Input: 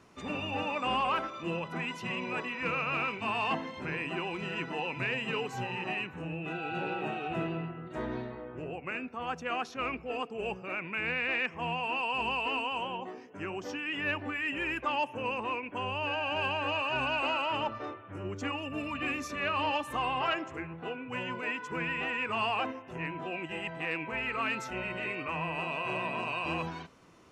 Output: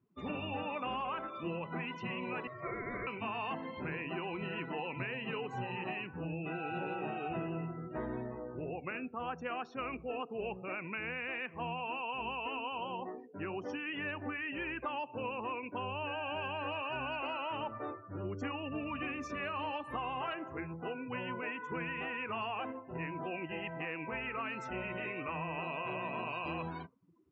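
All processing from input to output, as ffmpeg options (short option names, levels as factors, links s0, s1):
-filter_complex "[0:a]asettb=1/sr,asplit=3[s0][s1][s2];[s0]atrim=end=2.474[s3];[s1]atrim=start=2.47:end=3.07,asetpts=PTS-STARTPTS,afade=t=in:d=0.004:c=qsin,afade=t=out:st=0.596:d=0.004:c=qsin,asuperstop=centerf=2200:order=8:qfactor=1.3,aeval=exprs='val(0)*sin(2*PI*860*n/s)':c=same[s4];[s2]atrim=start=3.066[s5];[s3][s4]acrossfade=d=0.004:c1=hsin:c2=qsin[s6];[s6][s5]acrossfade=d=0.004:c1=qsin:c2=hsin,afftdn=nr=28:nf=-47,acompressor=threshold=0.02:ratio=6,highshelf=f=4100:g=-11"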